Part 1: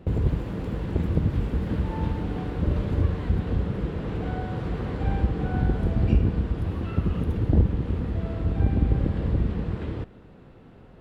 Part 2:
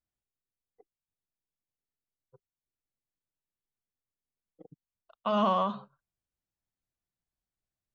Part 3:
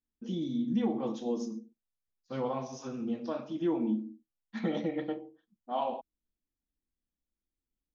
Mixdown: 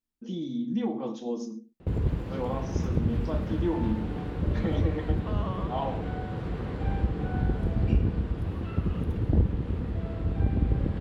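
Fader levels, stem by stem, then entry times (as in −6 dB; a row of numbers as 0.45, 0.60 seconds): −3.5, −12.0, +0.5 decibels; 1.80, 0.00, 0.00 seconds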